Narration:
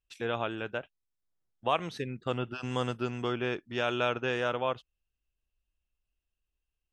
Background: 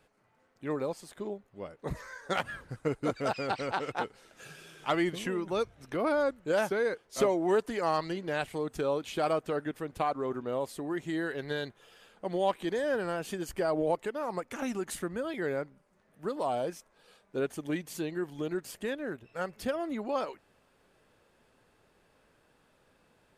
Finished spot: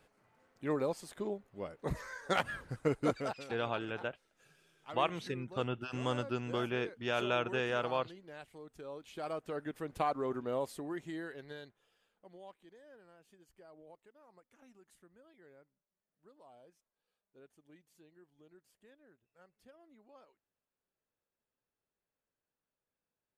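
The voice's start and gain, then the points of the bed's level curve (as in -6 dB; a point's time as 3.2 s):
3.30 s, -3.5 dB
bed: 3.14 s -0.5 dB
3.5 s -17.5 dB
8.77 s -17.5 dB
9.93 s -2.5 dB
10.6 s -2.5 dB
12.79 s -28 dB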